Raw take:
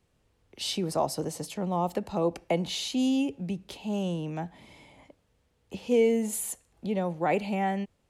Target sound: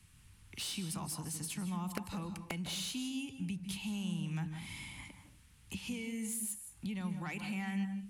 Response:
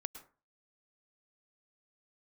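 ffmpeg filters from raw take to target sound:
-filter_complex "[0:a]equalizer=f=100:t=o:w=0.67:g=4,equalizer=f=630:t=o:w=0.67:g=-9,equalizer=f=2500:t=o:w=0.67:g=3,equalizer=f=10000:t=o:w=0.67:g=11,asplit=2[s0][s1];[s1]alimiter=limit=0.1:level=0:latency=1:release=236,volume=1.33[s2];[s0][s2]amix=inputs=2:normalize=0,acompressor=threshold=0.00891:ratio=2.5,acrossover=split=260|860[s3][s4][s5];[s4]acrusher=bits=4:mix=0:aa=0.000001[s6];[s5]asoftclip=type=tanh:threshold=0.015[s7];[s3][s6][s7]amix=inputs=3:normalize=0[s8];[1:a]atrim=start_sample=2205,afade=t=out:st=0.24:d=0.01,atrim=end_sample=11025,asetrate=29988,aresample=44100[s9];[s8][s9]afir=irnorm=-1:irlink=0,volume=1.19"

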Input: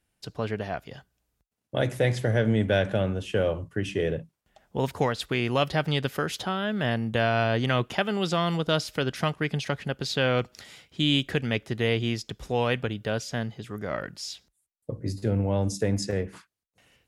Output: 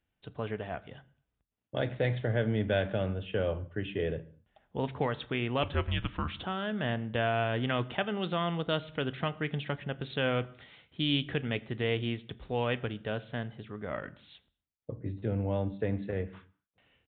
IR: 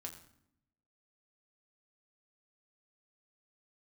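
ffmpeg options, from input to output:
-filter_complex "[0:a]asettb=1/sr,asplit=3[s0][s1][s2];[s0]atrim=end=5.634[s3];[s1]atrim=start=5.63:end=6.44,asetpts=PTS-STARTPTS,afade=t=in:d=0.004:c=qsin,afade=t=out:st=0.806:d=0.004:c=qsin,afreqshift=-240[s4];[s2]atrim=start=6.436[s5];[s3][s4]acrossfade=d=0.004:c1=hsin:c2=qsin[s6];[s6][s5]acrossfade=d=0.004:c1=qsin:c2=hsin,asplit=2[s7][s8];[1:a]atrim=start_sample=2205,afade=t=out:st=0.31:d=0.01,atrim=end_sample=14112[s9];[s8][s9]afir=irnorm=-1:irlink=0,volume=0.596[s10];[s7][s10]amix=inputs=2:normalize=0,aresample=8000,aresample=44100,volume=0.398"

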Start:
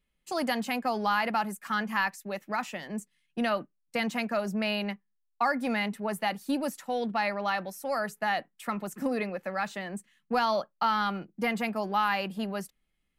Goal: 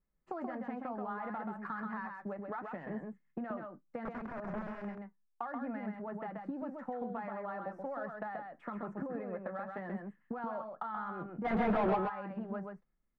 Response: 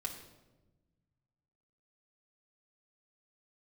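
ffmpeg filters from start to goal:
-filter_complex "[0:a]agate=range=0.447:threshold=0.00141:ratio=16:detection=peak,flanger=delay=5.5:depth=3.7:regen=-56:speed=1.1:shape=triangular,alimiter=level_in=2:limit=0.0631:level=0:latency=1:release=178,volume=0.501,acompressor=threshold=0.00708:ratio=10,asettb=1/sr,asplit=3[s0][s1][s2];[s0]atrim=end=4.054[s3];[s1]atrim=start=4.05:end=4.85,asetpts=PTS-STARTPTS,afade=t=in:d=0.004:c=qsin,afade=t=out:st=0.796:d=0.004:c=qsin,aeval=exprs='(mod(112*val(0)+1,2)-1)/112':c=same[s4];[s2]atrim=start=4.846[s5];[s3][s4]acrossfade=d=0.004:c1=hsin:c2=qsin[s6];[s6][s5]acrossfade=d=0.004:c1=qsin:c2=hsin,highshelf=f=2300:t=q:w=1.5:g=-13,asplit=3[s7][s8][s9];[s7]afade=t=out:st=11.44:d=0.02[s10];[s8]asplit=2[s11][s12];[s12]highpass=f=720:p=1,volume=63.1,asoftclip=type=tanh:threshold=0.0398[s13];[s11][s13]amix=inputs=2:normalize=0,lowpass=f=1300:p=1,volume=0.501,afade=t=in:st=11.44:d=0.02,afade=t=out:st=11.95:d=0.02[s14];[s9]afade=t=in:st=11.95:d=0.02[s15];[s10][s14][s15]amix=inputs=3:normalize=0,adynamicsmooth=sensitivity=1.5:basefreq=1900,aecho=1:1:131:0.596,volume=2"

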